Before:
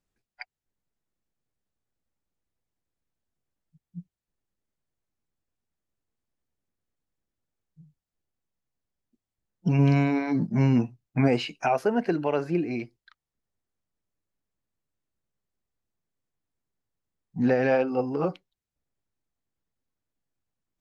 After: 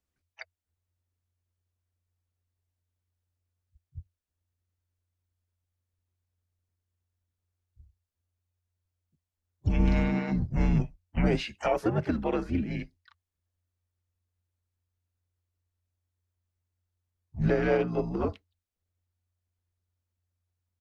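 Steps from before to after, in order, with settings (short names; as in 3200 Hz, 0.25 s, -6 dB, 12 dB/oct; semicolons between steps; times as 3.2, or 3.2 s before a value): harmoniser -4 st -11 dB, +3 st -16 dB, +4 st -11 dB; frequency shift -89 Hz; gain -3.5 dB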